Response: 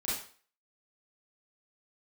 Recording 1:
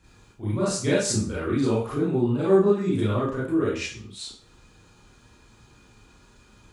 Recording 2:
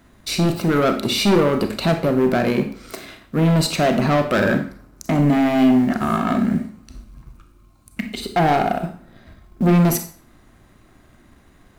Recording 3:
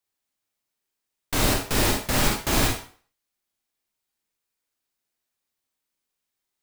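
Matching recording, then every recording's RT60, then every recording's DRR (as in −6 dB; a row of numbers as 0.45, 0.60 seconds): 1; 0.45, 0.45, 0.45 seconds; −9.0, 6.5, 0.0 decibels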